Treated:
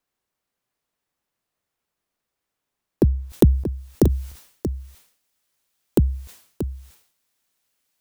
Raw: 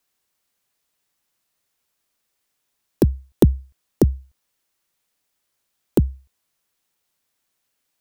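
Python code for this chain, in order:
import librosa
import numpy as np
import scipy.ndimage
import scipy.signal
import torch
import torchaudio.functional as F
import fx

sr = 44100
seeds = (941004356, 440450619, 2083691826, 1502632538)

y = fx.high_shelf(x, sr, hz=2200.0, db=fx.steps((0.0, -10.0), (3.29, 2.0)))
y = y + 10.0 ** (-9.5 / 20.0) * np.pad(y, (int(632 * sr / 1000.0), 0))[:len(y)]
y = fx.sustainer(y, sr, db_per_s=100.0)
y = F.gain(torch.from_numpy(y), -1.0).numpy()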